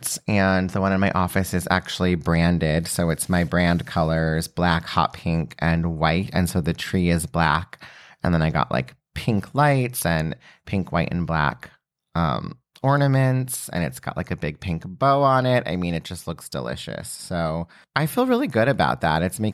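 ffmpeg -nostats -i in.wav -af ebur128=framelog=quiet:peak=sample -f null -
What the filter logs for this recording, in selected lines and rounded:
Integrated loudness:
  I:         -22.4 LUFS
  Threshold: -32.6 LUFS
Loudness range:
  LRA:         2.7 LU
  Threshold: -42.8 LUFS
  LRA low:   -24.2 LUFS
  LRA high:  -21.4 LUFS
Sample peak:
  Peak:       -4.3 dBFS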